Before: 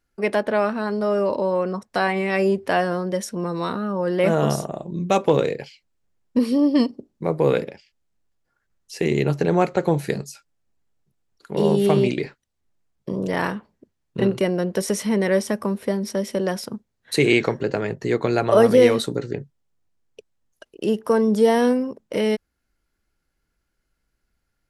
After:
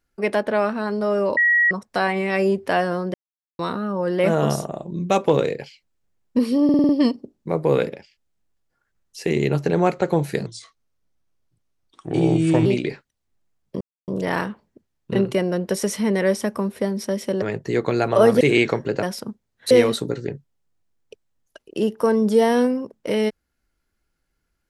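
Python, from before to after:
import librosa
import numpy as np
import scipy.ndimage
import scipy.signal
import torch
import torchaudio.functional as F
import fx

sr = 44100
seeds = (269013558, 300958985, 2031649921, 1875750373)

y = fx.edit(x, sr, fx.bleep(start_s=1.37, length_s=0.34, hz=1910.0, db=-13.5),
    fx.silence(start_s=3.14, length_s=0.45),
    fx.stutter(start_s=6.64, slice_s=0.05, count=6),
    fx.speed_span(start_s=10.21, length_s=1.78, speed=0.81),
    fx.insert_silence(at_s=13.14, length_s=0.27),
    fx.swap(start_s=16.48, length_s=0.68, other_s=17.78, other_length_s=0.99), tone=tone)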